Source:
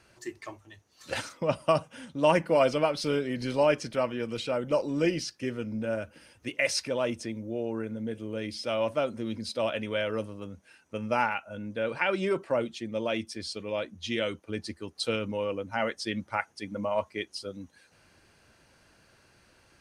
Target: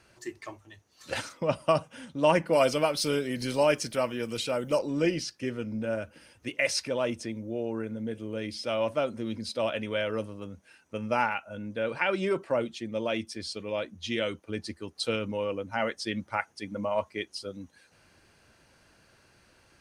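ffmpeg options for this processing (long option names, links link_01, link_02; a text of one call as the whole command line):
ffmpeg -i in.wav -filter_complex "[0:a]asettb=1/sr,asplit=3[link_01][link_02][link_03];[link_01]atrim=end=2.534[link_04];[link_02]atrim=start=2.53:end=4.79,asetpts=PTS-STARTPTS,afade=type=in:duration=0.004:curve=qsin,afade=type=out:start_time=2.256:duration=0.004:curve=qsin,aemphasis=mode=production:type=50fm[link_05];[link_03]atrim=start=4.786[link_06];[link_04][link_05]acrossfade=duration=0.004:curve1=hsin:curve2=qsin[link_07];[link_07][link_06]acrossfade=duration=0.004:curve1=qsin:curve2=hsin" out.wav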